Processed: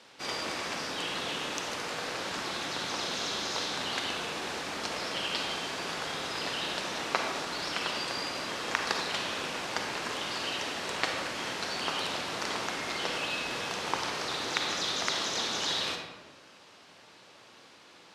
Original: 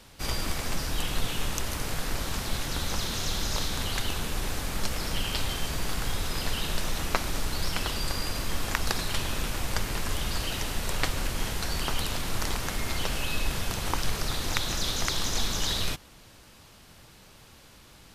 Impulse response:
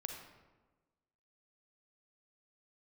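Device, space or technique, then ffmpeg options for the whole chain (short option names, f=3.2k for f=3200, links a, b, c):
supermarket ceiling speaker: -filter_complex "[0:a]highpass=310,lowpass=5.7k[a];[1:a]atrim=start_sample=2205[b];[a][b]afir=irnorm=-1:irlink=0,volume=3dB"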